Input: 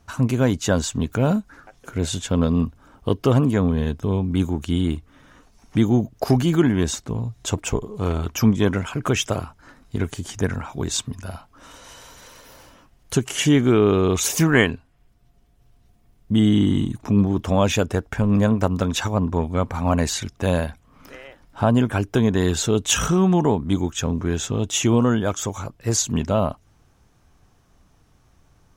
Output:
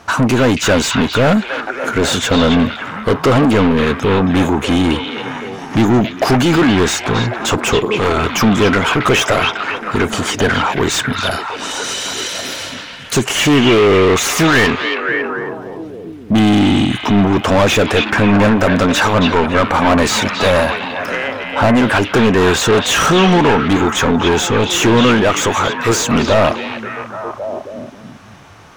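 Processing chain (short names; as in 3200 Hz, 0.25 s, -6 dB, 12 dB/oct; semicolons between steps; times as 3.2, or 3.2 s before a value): 11.31–13.26 graphic EQ 1000/4000/8000 Hz -9/+5/+9 dB; overdrive pedal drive 32 dB, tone 2500 Hz, clips at -2.5 dBFS; delay with a stepping band-pass 0.274 s, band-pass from 2900 Hz, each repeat -0.7 oct, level -1 dB; gain -1 dB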